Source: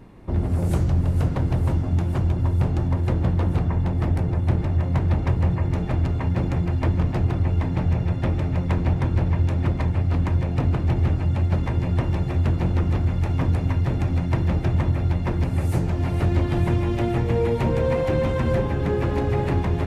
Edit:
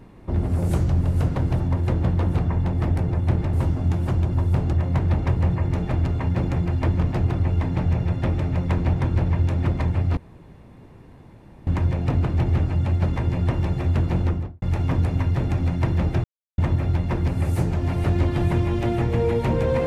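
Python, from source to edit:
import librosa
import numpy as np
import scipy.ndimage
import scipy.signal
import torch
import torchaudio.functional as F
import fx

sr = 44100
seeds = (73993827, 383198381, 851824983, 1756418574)

y = fx.studio_fade_out(x, sr, start_s=12.71, length_s=0.41)
y = fx.edit(y, sr, fx.move(start_s=1.6, length_s=1.2, to_s=4.73),
    fx.insert_room_tone(at_s=10.17, length_s=1.5),
    fx.insert_silence(at_s=14.74, length_s=0.34), tone=tone)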